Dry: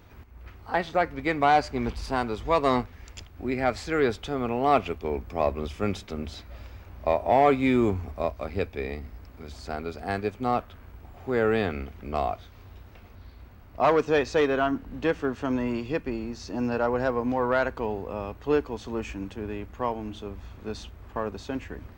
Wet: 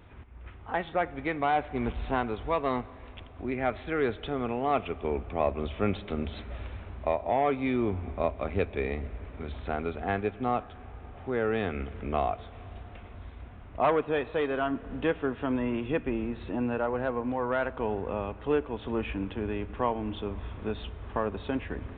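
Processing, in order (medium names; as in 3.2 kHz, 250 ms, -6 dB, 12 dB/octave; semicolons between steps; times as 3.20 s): in parallel at -0.5 dB: compression, threshold -36 dBFS, peak gain reduction 19.5 dB; on the sum: resampled via 8 kHz; gain riding within 3 dB 0.5 s; algorithmic reverb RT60 4.1 s, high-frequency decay 0.9×, pre-delay 20 ms, DRR 18.5 dB; trim -4.5 dB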